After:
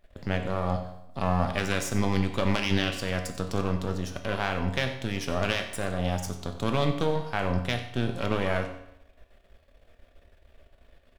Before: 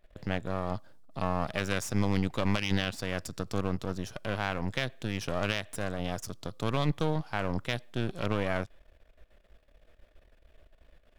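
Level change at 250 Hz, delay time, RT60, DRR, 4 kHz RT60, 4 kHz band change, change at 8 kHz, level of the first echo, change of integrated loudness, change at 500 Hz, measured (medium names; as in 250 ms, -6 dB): +3.0 dB, 93 ms, 0.80 s, 4.5 dB, 0.70 s, +3.5 dB, +3.5 dB, -15.0 dB, +3.5 dB, +4.0 dB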